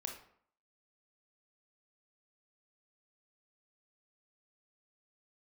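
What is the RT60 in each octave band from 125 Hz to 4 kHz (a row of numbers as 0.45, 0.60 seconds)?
0.55, 0.65, 0.60, 0.60, 0.50, 0.40 seconds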